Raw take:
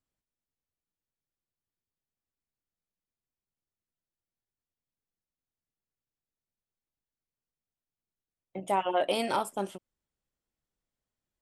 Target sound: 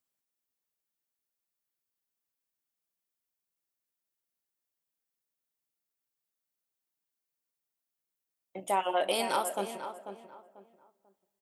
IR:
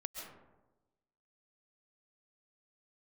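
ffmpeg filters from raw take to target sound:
-filter_complex "[0:a]highpass=f=370:p=1,highshelf=f=8.9k:g=11,asplit=2[a][b];[b]adelay=492,lowpass=f=1.7k:p=1,volume=-9dB,asplit=2[c][d];[d]adelay=492,lowpass=f=1.7k:p=1,volume=0.28,asplit=2[e][f];[f]adelay=492,lowpass=f=1.7k:p=1,volume=0.28[g];[a][c][e][g]amix=inputs=4:normalize=0,asplit=2[h][i];[1:a]atrim=start_sample=2205,adelay=40[j];[i][j]afir=irnorm=-1:irlink=0,volume=-15.5dB[k];[h][k]amix=inputs=2:normalize=0"

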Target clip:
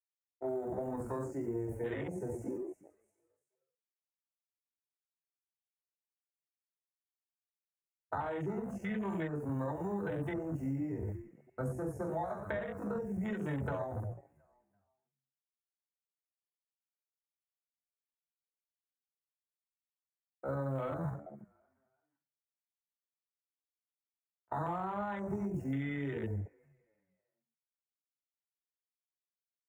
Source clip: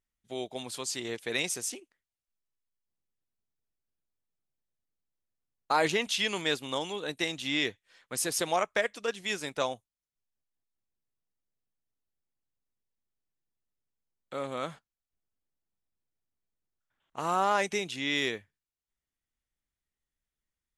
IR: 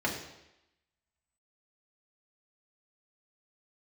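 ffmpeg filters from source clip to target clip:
-filter_complex "[0:a]aeval=exprs='val(0)+0.5*0.01*sgn(val(0))':c=same,agate=range=-33dB:threshold=-37dB:ratio=3:detection=peak,acrusher=bits=7:mix=0:aa=0.5,acompressor=threshold=-31dB:ratio=16,asuperstop=centerf=3700:order=4:qfactor=0.54,bandreject=f=60:t=h:w=6,bandreject=f=120:t=h:w=6,asplit=4[a][b][c][d];[b]adelay=247,afreqshift=45,volume=-19.5dB[e];[c]adelay=494,afreqshift=90,volume=-28.1dB[f];[d]adelay=741,afreqshift=135,volume=-36.8dB[g];[a][e][f][g]amix=inputs=4:normalize=0[h];[1:a]atrim=start_sample=2205,atrim=end_sample=3969[i];[h][i]afir=irnorm=-1:irlink=0,afwtdn=0.0158,atempo=0.7,asubboost=boost=7.5:cutoff=99,acrossover=split=130|3000[j][k][l];[j]acompressor=threshold=-44dB:ratio=4[m];[k]acompressor=threshold=-36dB:ratio=4[n];[l]acompressor=threshold=-60dB:ratio=4[o];[m][n][o]amix=inputs=3:normalize=0"

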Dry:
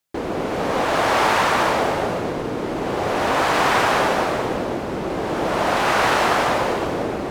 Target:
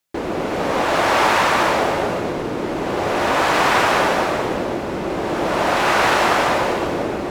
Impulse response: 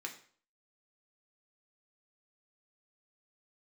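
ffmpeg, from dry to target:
-filter_complex "[0:a]asplit=2[a][b];[1:a]atrim=start_sample=2205,asetrate=48510,aresample=44100[c];[b][c]afir=irnorm=-1:irlink=0,volume=-7dB[d];[a][d]amix=inputs=2:normalize=0"

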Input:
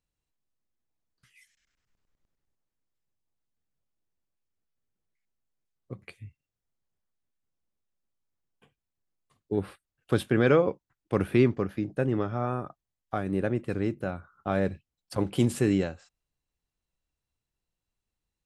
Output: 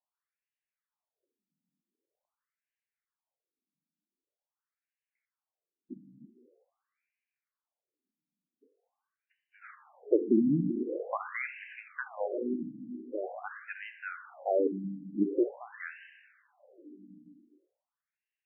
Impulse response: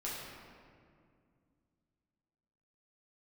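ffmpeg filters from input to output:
-filter_complex "[0:a]asplit=2[a][b];[1:a]atrim=start_sample=2205,adelay=49[c];[b][c]afir=irnorm=-1:irlink=0,volume=-10.5dB[d];[a][d]amix=inputs=2:normalize=0,afftfilt=real='re*between(b*sr/1024,220*pow(2200/220,0.5+0.5*sin(2*PI*0.45*pts/sr))/1.41,220*pow(2200/220,0.5+0.5*sin(2*PI*0.45*pts/sr))*1.41)':imag='im*between(b*sr/1024,220*pow(2200/220,0.5+0.5*sin(2*PI*0.45*pts/sr))/1.41,220*pow(2200/220,0.5+0.5*sin(2*PI*0.45*pts/sr))*1.41)':win_size=1024:overlap=0.75,volume=3dB"

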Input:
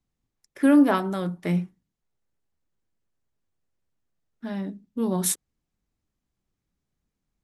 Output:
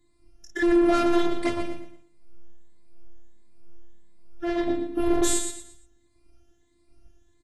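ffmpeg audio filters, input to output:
-filter_complex "[0:a]afftfilt=real='re*pow(10,18/40*sin(2*PI*(1*log(max(b,1)*sr/1024/100)/log(2)-(1.5)*(pts-256)/sr)))':imag='im*pow(10,18/40*sin(2*PI*(1*log(max(b,1)*sr/1024/100)/log(2)-(1.5)*(pts-256)/sr)))':win_size=1024:overlap=0.75,acompressor=threshold=-19dB:ratio=20,asplit=2[a][b];[b]aecho=0:1:23|53:0.596|0.501[c];[a][c]amix=inputs=2:normalize=0,aeval=exprs='(tanh(35.5*val(0)+0.1)-tanh(0.1))/35.5':c=same,flanger=delay=0.9:depth=5.3:regen=87:speed=0.98:shape=triangular,lowshelf=f=470:g=10,bandreject=f=1k:w=11,asplit=2[d][e];[e]aecho=0:1:116|232|348|464:0.447|0.143|0.0457|0.0146[f];[d][f]amix=inputs=2:normalize=0,aeval=exprs='0.168*sin(PI/2*2.82*val(0)/0.168)':c=same,afftfilt=real='hypot(re,im)*cos(PI*b)':imag='0':win_size=512:overlap=0.75,volume=3dB" -ar 24000 -c:a aac -b:a 32k

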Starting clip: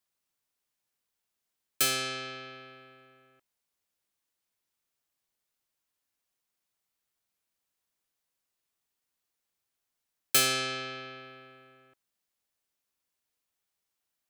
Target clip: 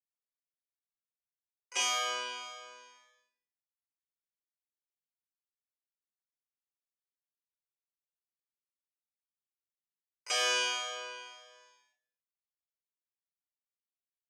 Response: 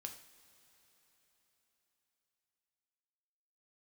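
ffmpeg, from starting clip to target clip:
-filter_complex "[0:a]equalizer=f=4.2k:t=o:w=0.43:g=-8.5,asetrate=83250,aresample=44100,atempo=0.529732,aeval=exprs='sgn(val(0))*max(abs(val(0))-0.00133,0)':c=same,asplit=3[a][b][c];[b]asetrate=22050,aresample=44100,atempo=2,volume=-6dB[d];[c]asetrate=88200,aresample=44100,atempo=0.5,volume=-13dB[e];[a][d][e]amix=inputs=3:normalize=0,asoftclip=type=hard:threshold=-26dB,highpass=f=460:w=0.5412,highpass=f=460:w=1.3066,equalizer=f=490:t=q:w=4:g=-4,equalizer=f=790:t=q:w=4:g=3,equalizer=f=1.4k:t=q:w=4:g=-7,equalizer=f=2.5k:t=q:w=4:g=4,equalizer=f=4.2k:t=q:w=4:g=-9,lowpass=f=6.6k:w=0.5412,lowpass=f=6.6k:w=1.3066,asplit=2[f][g];[g]adelay=26,volume=-9dB[h];[f][h]amix=inputs=2:normalize=0,aecho=1:1:21|33:0.251|0.473,asplit=2[i][j];[1:a]atrim=start_sample=2205,afade=t=out:st=0.39:d=0.01,atrim=end_sample=17640,lowshelf=f=260:g=11[k];[j][k]afir=irnorm=-1:irlink=0,volume=6dB[l];[i][l]amix=inputs=2:normalize=0,asplit=2[m][n];[n]adelay=5.7,afreqshift=1.8[o];[m][o]amix=inputs=2:normalize=1"

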